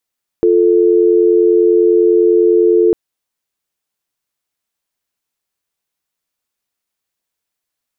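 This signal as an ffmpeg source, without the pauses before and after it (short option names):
-f lavfi -i "aevalsrc='0.316*(sin(2*PI*350*t)+sin(2*PI*440*t))':d=2.5:s=44100"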